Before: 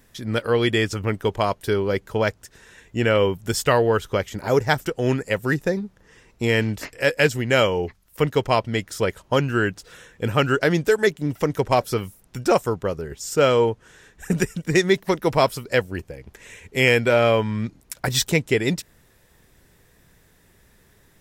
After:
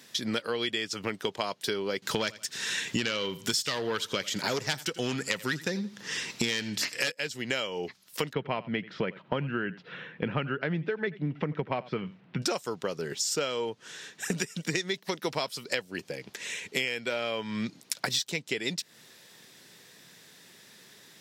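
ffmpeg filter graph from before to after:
-filter_complex "[0:a]asettb=1/sr,asplit=3[a][b][c];[a]atrim=end=2.024[d];[b]atrim=start=2.02:end=7.12,asetpts=PTS-STARTPTS,afade=t=in:d=0.004:c=qsin,afade=t=out:st=5.096:d=0.004:c=qsin,equalizer=f=550:w=0.69:g=-6,aeval=exprs='0.531*sin(PI/2*3.16*val(0)/0.531)':c=same,aecho=1:1:83|166:0.1|0.025,atrim=end_sample=224910[e];[c]atrim=start=7.116[f];[d][e]acrossfade=d=0.004:c1=hsin:c2=qsin[g];[g][f]acrossfade=d=0.004:c1=qsin:c2=hsin,asettb=1/sr,asplit=3[h][i][j];[h]atrim=end=8.334[k];[i]atrim=start=8.33:end=12.42,asetpts=PTS-STARTPTS,afade=t=in:d=0.004:c=qsin,afade=t=out:st=4.086:d=0.004:c=qsin,lowpass=f=2.6k:w=0.5412,lowpass=f=2.6k:w=1.3066,equalizer=f=160:t=o:w=1:g=10.5,aecho=1:1:85:0.0841,atrim=end_sample=180369[l];[j]atrim=start=12.416[m];[k][l]acrossfade=d=0.004:c1=hsin:c2=qsin[n];[n][m]acrossfade=d=0.004:c1=qsin:c2=hsin,highpass=f=150:w=0.5412,highpass=f=150:w=1.3066,equalizer=f=4.3k:t=o:w=1.8:g=13,acompressor=threshold=-27dB:ratio=12"

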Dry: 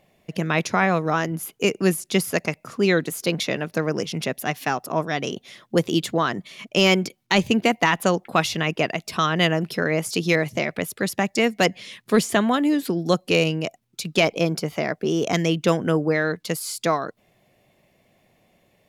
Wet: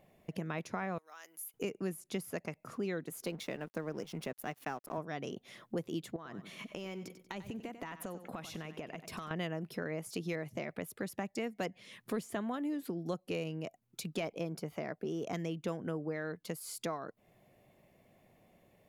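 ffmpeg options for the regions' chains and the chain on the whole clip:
-filter_complex "[0:a]asettb=1/sr,asplit=3[a][b][c];[a]atrim=end=0.984[d];[b]atrim=start=0.98:end=1.54,asetpts=PTS-STARTPTS,afade=t=in:d=0.004:c=qsin,afade=t=out:st=0.556:d=0.004:c=qsin,highpass=410,aderivative,acompressor=threshold=-34dB:ratio=4:attack=3.2:release=140:knee=1:detection=peak[e];[c]atrim=start=1.536[f];[d][e]acrossfade=d=0.004:c1=hsin:c2=qsin[g];[g][f]acrossfade=d=0.004:c1=qsin:c2=hsin,asettb=1/sr,asplit=3[h][i][j];[h]atrim=end=3.254[k];[i]atrim=start=3.25:end=4.98,asetpts=PTS-STARTPTS,afade=t=in:d=0.004:c=qsin,afade=t=out:st=1.726:d=0.004:c=qsin,highpass=130,aeval=exprs='sgn(val(0))*max(abs(val(0))-0.00794,0)':c=same[l];[j]atrim=start=4.976[m];[k][l]acrossfade=d=0.004:c1=hsin:c2=qsin[n];[n][m]acrossfade=d=0.004:c1=qsin:c2=hsin,asettb=1/sr,asplit=3[o][p][q];[o]atrim=end=6.164[r];[p]atrim=start=6.16:end=9.31,asetpts=PTS-STARTPTS,afade=t=in:d=0.004:c=qsin,afade=t=out:st=3.146:d=0.004:c=qsin,acompressor=threshold=-33dB:ratio=4:attack=3.2:release=140:knee=1:detection=peak,bandreject=f=4.7k:w=19,aecho=1:1:94|188|282:0.224|0.0784|0.0274,atrim=end_sample=138915[s];[q]atrim=start=9.306[t];[r][s]acrossfade=d=0.004:c1=hsin:c2=qsin[u];[u][t]acrossfade=d=0.004:c1=qsin:c2=hsin,equalizer=f=4.5k:w=0.51:g=-7.5,acompressor=threshold=-38dB:ratio=2.5,volume=-3dB"

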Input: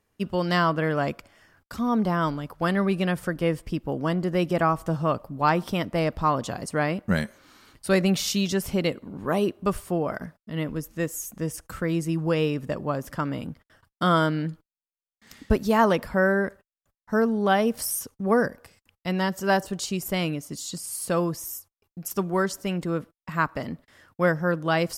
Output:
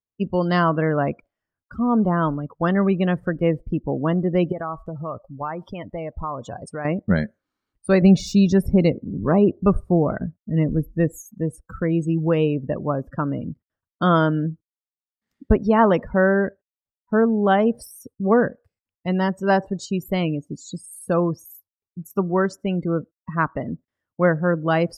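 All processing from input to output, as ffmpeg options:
-filter_complex "[0:a]asettb=1/sr,asplit=3[a][b][c];[a]atrim=end=4.524[d];[b]atrim=start=4.52:end=6.85,asetpts=PTS-STARTPTS,afade=t=in:d=0.004:c=qsin,afade=t=out:st=2.326:d=0.004:c=qsin,acompressor=threshold=-24dB:ratio=8:attack=3.2:release=140:knee=1:detection=peak,equalizer=f=220:w=0.69:g=-8[e];[c]atrim=start=6.846[f];[d][e]acrossfade=d=0.004:c1=hsin:c2=qsin[g];[g][f]acrossfade=d=0.004:c1=qsin:c2=hsin,asettb=1/sr,asplit=3[h][i][j];[h]atrim=end=8.024[k];[i]atrim=start=8.02:end=11.18,asetpts=PTS-STARTPTS,afade=t=in:d=0.004:c=qsin,afade=t=out:st=3.156:d=0.004:c=qsin,lowshelf=f=230:g=8.5,bandreject=f=3.1k:w=6.6[l];[j]atrim=start=11.176[m];[k][l]acrossfade=d=0.004:c1=hsin:c2=qsin[n];[n][m]acrossfade=d=0.004:c1=qsin:c2=hsin,afftdn=nr=31:nf=-34,deesser=0.6,tiltshelf=f=1.5k:g=3.5,volume=1.5dB"

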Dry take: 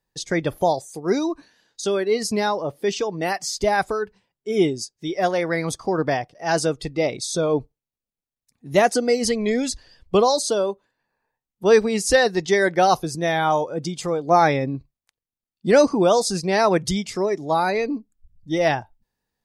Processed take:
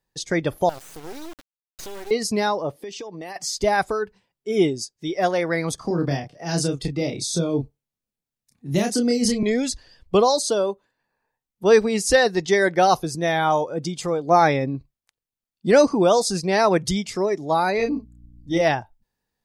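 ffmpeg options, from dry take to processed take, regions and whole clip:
-filter_complex "[0:a]asettb=1/sr,asplit=3[a][b][c];[a]atrim=end=0.694[d];[b]atrim=start=0.69:end=2.11,asetpts=PTS-STARTPTS,afade=t=in:d=0.004:c=qsin,afade=t=out:st=1.416:d=0.004:c=qsin,acompressor=threshold=-29dB:ratio=6:attack=3.2:release=140:knee=1:detection=peak,acrusher=bits=4:dc=4:mix=0:aa=0.000001[e];[c]atrim=start=2.106[f];[d][e]acrossfade=d=0.004:c1=hsin:c2=qsin[g];[g][f]acrossfade=d=0.004:c1=qsin:c2=hsin,asettb=1/sr,asplit=3[h][i][j];[h]atrim=end=2.764[k];[i]atrim=start=2.76:end=3.36,asetpts=PTS-STARTPTS,afade=t=in:d=0.004:c=qsin,afade=t=out:st=0.596:d=0.004:c=qsin,highpass=180,bandreject=f=1.4k:w=5.1,acompressor=threshold=-31dB:ratio=8:attack=3.2:release=140:knee=1:detection=peak[l];[j]atrim=start=3.356[m];[k][l]acrossfade=d=0.004:c1=hsin:c2=qsin[n];[n][m]acrossfade=d=0.004:c1=qsin:c2=hsin,asettb=1/sr,asplit=3[o][p][q];[o]atrim=end=5.754[r];[p]atrim=start=5.75:end=9.43,asetpts=PTS-STARTPTS,afade=t=in:d=0.004:c=qsin,afade=t=out:st=3.676:d=0.004:c=qsin,equalizer=f=160:t=o:w=1.7:g=5,acrossover=split=350|3000[s][t][u];[t]acompressor=threshold=-33dB:ratio=3:attack=3.2:release=140:knee=2.83:detection=peak[v];[s][v][u]amix=inputs=3:normalize=0,asplit=2[w][x];[x]adelay=29,volume=-5dB[y];[w][y]amix=inputs=2:normalize=0,atrim=end_sample=162288[z];[q]atrim=start=9.426[aa];[r][z]acrossfade=d=0.004:c1=hsin:c2=qsin[ab];[ab][aa]acrossfade=d=0.004:c1=qsin:c2=hsin,asettb=1/sr,asplit=3[ac][ad][ae];[ac]atrim=end=17.774[af];[ad]atrim=start=17.77:end=18.61,asetpts=PTS-STARTPTS,afade=t=in:d=0.004:c=qsin,afade=t=out:st=0.836:d=0.004:c=qsin,asplit=2[ag][ah];[ah]adelay=30,volume=-4dB[ai];[ag][ai]amix=inputs=2:normalize=0,atrim=end_sample=37044,aeval=exprs='val(0)+0.00447*(sin(2*PI*60*n/s)+sin(2*PI*2*60*n/s)/2+sin(2*PI*3*60*n/s)/3+sin(2*PI*4*60*n/s)/4+sin(2*PI*5*60*n/s)/5)':c=same[aj];[ae]atrim=start=18.606[ak];[af][aj]acrossfade=d=0.004:c1=hsin:c2=qsin[al];[al][ak]acrossfade=d=0.004:c1=qsin:c2=hsin"

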